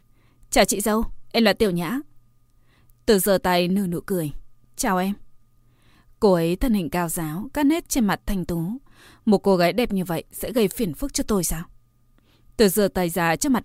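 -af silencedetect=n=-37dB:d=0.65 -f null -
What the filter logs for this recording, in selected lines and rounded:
silence_start: 2.01
silence_end: 2.90 | silence_duration: 0.88
silence_start: 5.22
silence_end: 6.22 | silence_duration: 1.00
silence_start: 11.65
silence_end: 12.59 | silence_duration: 0.94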